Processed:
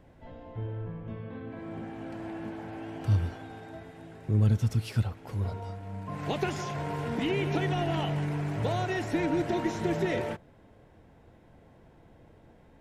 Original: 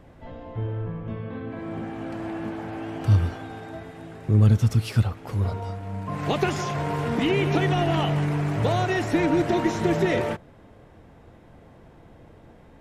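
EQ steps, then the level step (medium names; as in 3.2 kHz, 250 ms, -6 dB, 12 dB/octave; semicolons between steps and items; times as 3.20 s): band-stop 1.2 kHz, Q 12; -6.5 dB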